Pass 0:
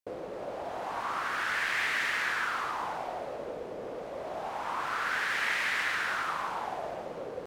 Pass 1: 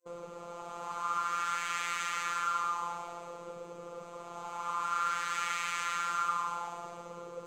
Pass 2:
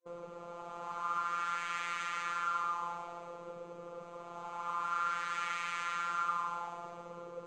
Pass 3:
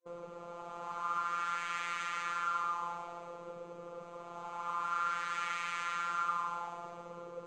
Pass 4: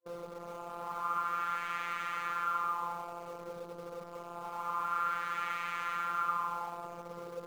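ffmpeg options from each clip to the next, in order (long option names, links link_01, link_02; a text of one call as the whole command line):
ffmpeg -i in.wav -af "superequalizer=6b=0.398:8b=0.398:10b=2.24:11b=0.447:15b=3.16,afftfilt=real='hypot(re,im)*cos(PI*b)':imag='0':win_size=1024:overlap=0.75,volume=-1dB" out.wav
ffmpeg -i in.wav -af "aemphasis=mode=reproduction:type=50fm,volume=-2dB" out.wav
ffmpeg -i in.wav -af anull out.wav
ffmpeg -i in.wav -filter_complex "[0:a]lowpass=frequency=1900:poles=1,asplit=2[link_01][link_02];[link_02]acrusher=bits=7:mix=0:aa=0.000001,volume=-8dB[link_03];[link_01][link_03]amix=inputs=2:normalize=0" out.wav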